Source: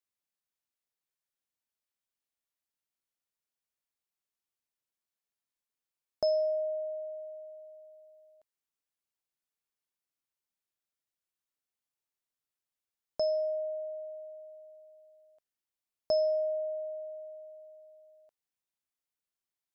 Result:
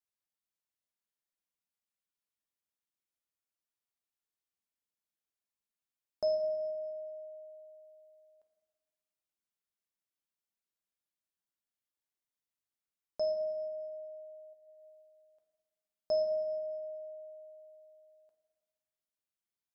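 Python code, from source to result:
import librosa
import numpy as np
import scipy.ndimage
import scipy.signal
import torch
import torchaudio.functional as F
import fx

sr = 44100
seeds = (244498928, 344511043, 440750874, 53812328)

y = fx.over_compress(x, sr, threshold_db=-55.0, ratio=-1.0, at=(14.53, 15.02))
y = fx.rev_fdn(y, sr, rt60_s=1.4, lf_ratio=1.5, hf_ratio=0.85, size_ms=29.0, drr_db=4.0)
y = F.gain(torch.from_numpy(y), -6.0).numpy()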